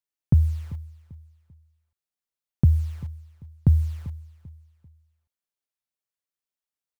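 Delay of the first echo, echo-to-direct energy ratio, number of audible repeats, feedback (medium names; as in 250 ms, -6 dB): 392 ms, -17.5 dB, 2, 34%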